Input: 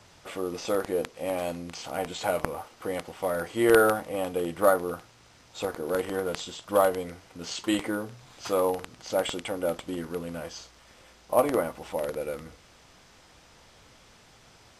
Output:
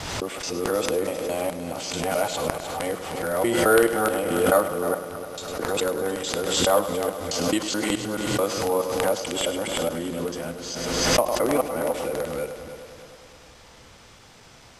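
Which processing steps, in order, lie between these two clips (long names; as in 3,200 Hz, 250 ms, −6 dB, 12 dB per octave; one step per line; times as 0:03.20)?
reversed piece by piece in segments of 215 ms
dynamic equaliser 8,300 Hz, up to +5 dB, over −52 dBFS, Q 0.71
in parallel at −2 dB: downward compressor, threshold −35 dBFS, peak gain reduction 19.5 dB
on the sum: hum removal 180.4 Hz, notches 37
on a send: echo machine with several playback heads 102 ms, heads first and third, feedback 59%, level −12.5 dB
on the sum: background raised ahead of every attack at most 34 dB per second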